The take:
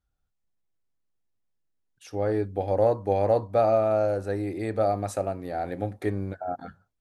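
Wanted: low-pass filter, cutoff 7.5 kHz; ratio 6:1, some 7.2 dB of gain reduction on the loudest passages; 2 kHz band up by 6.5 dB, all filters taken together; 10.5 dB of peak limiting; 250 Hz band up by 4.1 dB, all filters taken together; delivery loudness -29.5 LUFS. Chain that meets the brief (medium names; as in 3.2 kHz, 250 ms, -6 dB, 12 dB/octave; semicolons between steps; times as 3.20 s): low-pass 7.5 kHz; peaking EQ 250 Hz +5.5 dB; peaking EQ 2 kHz +8 dB; compression 6:1, threshold -23 dBFS; trim +5 dB; peak limiter -19.5 dBFS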